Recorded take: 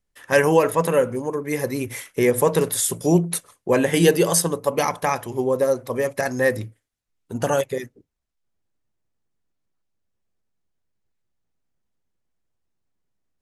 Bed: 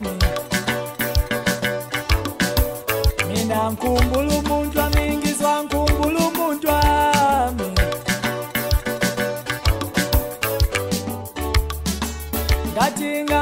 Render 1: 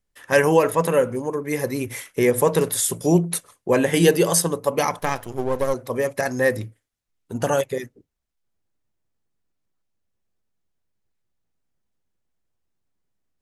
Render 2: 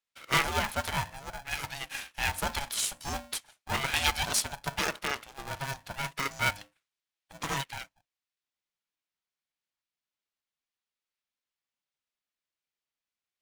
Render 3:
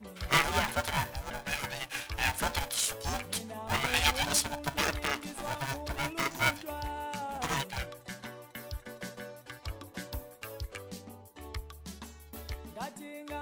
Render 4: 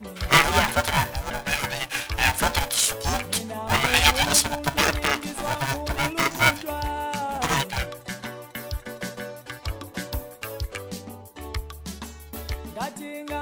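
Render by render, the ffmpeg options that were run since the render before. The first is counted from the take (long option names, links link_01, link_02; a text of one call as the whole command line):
ffmpeg -i in.wav -filter_complex "[0:a]asettb=1/sr,asplit=3[link_01][link_02][link_03];[link_01]atrim=end=4.994[link_04];[link_02]atrim=start=4.99:end=5.74,asetpts=PTS-STARTPTS,afade=type=in:duration=0.004:curve=qsin,afade=type=out:start_time=0.746:duration=0.004:curve=qsin,aeval=exprs='if(lt(val(0),0),0.251*val(0),val(0))':channel_layout=same[link_05];[link_03]atrim=start=5.736[link_06];[link_04][link_05]acrossfade=duration=0.004:curve1=hsin:curve2=qsin[link_07];[link_07][link_06]acrossfade=duration=0.004:curve1=qsin:curve2=hsin" out.wav
ffmpeg -i in.wav -af "bandpass=frequency=3000:width_type=q:width=0.96:csg=0,aeval=exprs='val(0)*sgn(sin(2*PI*410*n/s))':channel_layout=same" out.wav
ffmpeg -i in.wav -i bed.wav -filter_complex "[1:a]volume=-21.5dB[link_01];[0:a][link_01]amix=inputs=2:normalize=0" out.wav
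ffmpeg -i in.wav -af "volume=9dB" out.wav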